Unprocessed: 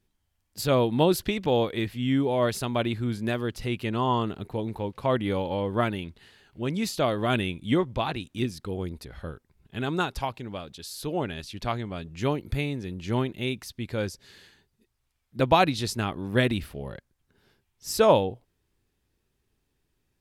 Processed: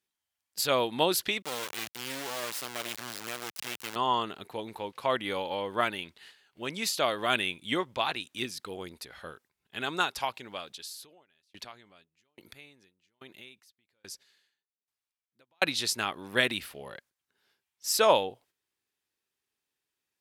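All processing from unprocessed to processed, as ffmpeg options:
-filter_complex "[0:a]asettb=1/sr,asplit=3[a][b][c];[a]atrim=end=1.424[d];[b]atrim=start=1.42:end=3.96,asetpts=PTS-STARTPTS,afade=t=in:d=0.004:c=qsin,afade=t=out:st=2.536:d=0.004:c=qsin,acompressor=threshold=-35dB:ratio=1.5:attack=3.2:release=140:knee=1:detection=peak,acrusher=bits=3:dc=4:mix=0:aa=0.000001,highpass=86[e];[c]atrim=start=3.956[f];[d][e]acrossfade=d=0.004:c1=hsin:c2=qsin[g];[g][f]acrossfade=d=0.004:c1=qsin:c2=hsin,asettb=1/sr,asplit=3[h][i][j];[h]atrim=end=10.714[k];[i]atrim=start=10.71:end=15.62,asetpts=PTS-STARTPTS,afade=t=in:d=0.004:c=qsin,afade=t=out:st=4.906:d=0.004:c=qsin,acompressor=threshold=-33dB:ratio=10:attack=3.2:release=140:knee=1:detection=peak,aeval=exprs='val(0)*pow(10,-29*if(lt(mod(1.2*n/s,1),2*abs(1.2)/1000),1-mod(1.2*n/s,1)/(2*abs(1.2)/1000),(mod(1.2*n/s,1)-2*abs(1.2)/1000)/(1-2*abs(1.2)/1000))/20)':c=same[l];[j]atrim=start=15.616[m];[k][l]acrossfade=d=0.004:c1=hsin:c2=qsin[n];[n][m]acrossfade=d=0.004:c1=qsin:c2=hsin,agate=range=-8dB:threshold=-54dB:ratio=16:detection=peak,highpass=f=1.3k:p=1,volume=4dB"

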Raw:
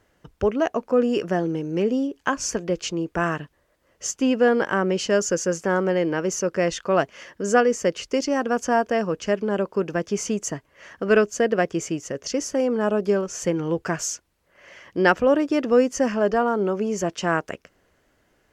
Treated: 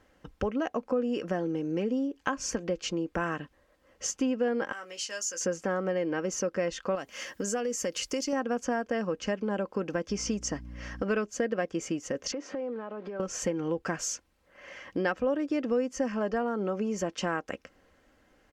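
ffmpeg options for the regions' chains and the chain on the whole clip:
-filter_complex "[0:a]asettb=1/sr,asplit=3[a][b][c];[a]atrim=end=4.724[d];[b]atrim=start=4.72:end=5.41,asetpts=PTS-STARTPTS,afade=t=in:d=0.004:c=qsin,afade=t=out:st=0.686:d=0.004:c=qsin,aderivative,asplit=2[e][f];[f]adelay=18,volume=-7dB[g];[e][g]amix=inputs=2:normalize=0,atrim=end_sample=30429[h];[c]atrim=start=5.406[i];[d][h]acrossfade=d=0.004:c1=hsin:c2=qsin[j];[j][i]acrossfade=d=0.004:c1=qsin:c2=hsin,asettb=1/sr,asplit=3[k][l][m];[k]atrim=end=6.954[n];[l]atrim=start=6.95:end=8.33,asetpts=PTS-STARTPTS,afade=t=in:d=0.004:c=qsin,afade=t=out:st=1.376:d=0.004:c=qsin,aemphasis=mode=production:type=75fm,acompressor=threshold=-26dB:ratio=3:attack=3.2:release=140:knee=1:detection=peak[o];[m]atrim=start=8.326[p];[n][o]acrossfade=d=0.004:c1=hsin:c2=qsin[q];[q][p]acrossfade=d=0.004:c1=qsin:c2=hsin,asettb=1/sr,asplit=3[r][s][t];[r]atrim=end=10.094[u];[s]atrim=start=10.09:end=11.03,asetpts=PTS-STARTPTS,afade=t=in:d=0.004:c=qsin,afade=t=out:st=0.936:d=0.004:c=qsin,acrossover=split=8800[v][w];[w]acompressor=threshold=-55dB:ratio=4:attack=1:release=60[x];[v][x]amix=inputs=2:normalize=0,equalizer=f=5.3k:t=o:w=0.3:g=9.5,aeval=exprs='val(0)+0.00891*(sin(2*PI*60*n/s)+sin(2*PI*2*60*n/s)/2+sin(2*PI*3*60*n/s)/3+sin(2*PI*4*60*n/s)/4+sin(2*PI*5*60*n/s)/5)':c=same[y];[t]atrim=start=11.026[z];[u][y]acrossfade=d=0.004:c1=hsin:c2=qsin[aa];[aa][z]acrossfade=d=0.004:c1=qsin:c2=hsin,asettb=1/sr,asplit=3[ab][ac][ad];[ab]atrim=end=12.324[ae];[ac]atrim=start=12.32:end=13.2,asetpts=PTS-STARTPTS,afade=t=in:d=0.004:c=qsin,afade=t=out:st=0.876:d=0.004:c=qsin,aeval=exprs='val(0)+0.5*0.0133*sgn(val(0))':c=same,highpass=280,lowpass=2.4k,acompressor=threshold=-33dB:ratio=8:attack=3.2:release=140:knee=1:detection=peak[af];[ad]atrim=start=13.196[ag];[ae][af]acrossfade=d=0.004:c1=hsin:c2=qsin[ah];[ah][ag]acrossfade=d=0.004:c1=qsin:c2=hsin,highshelf=f=7.8k:g=-8,aecho=1:1:3.8:0.4,acompressor=threshold=-29dB:ratio=3"

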